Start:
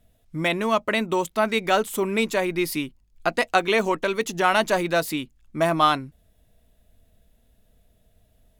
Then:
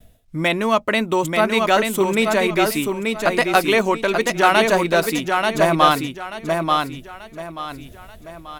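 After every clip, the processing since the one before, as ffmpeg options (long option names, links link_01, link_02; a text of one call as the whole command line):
ffmpeg -i in.wav -af "aecho=1:1:885|1770|2655|3540:0.631|0.164|0.0427|0.0111,areverse,acompressor=mode=upward:threshold=-31dB:ratio=2.5,areverse,agate=range=-33dB:threshold=-56dB:ratio=3:detection=peak,volume=4dB" out.wav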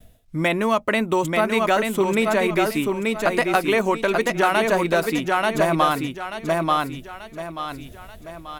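ffmpeg -i in.wav -filter_complex "[0:a]acrossover=split=3000|6600[link_01][link_02][link_03];[link_01]acompressor=threshold=-15dB:ratio=4[link_04];[link_02]acompressor=threshold=-41dB:ratio=4[link_05];[link_03]acompressor=threshold=-38dB:ratio=4[link_06];[link_04][link_05][link_06]amix=inputs=3:normalize=0" out.wav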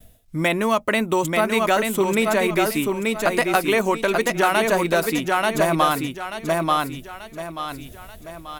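ffmpeg -i in.wav -af "highshelf=frequency=6500:gain=7.5" out.wav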